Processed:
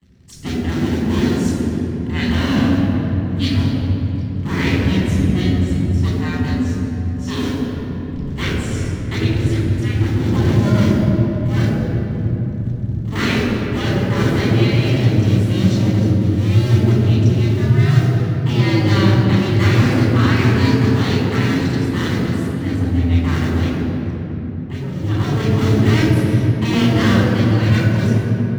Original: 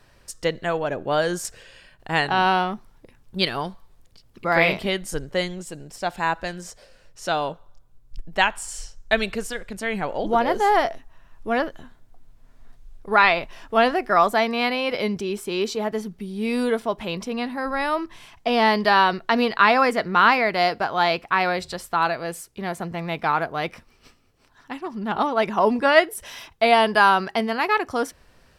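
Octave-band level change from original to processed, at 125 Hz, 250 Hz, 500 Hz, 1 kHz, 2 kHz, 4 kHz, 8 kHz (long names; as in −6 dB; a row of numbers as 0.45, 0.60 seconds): +24.0 dB, +12.5 dB, 0.0 dB, −8.5 dB, −2.5 dB, +1.5 dB, can't be measured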